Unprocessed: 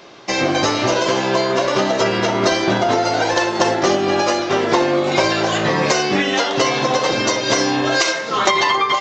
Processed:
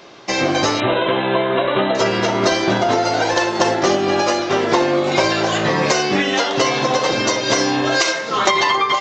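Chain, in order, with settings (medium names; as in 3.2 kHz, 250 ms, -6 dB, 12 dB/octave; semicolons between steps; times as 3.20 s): 0.80–1.95 s: brick-wall FIR low-pass 4.1 kHz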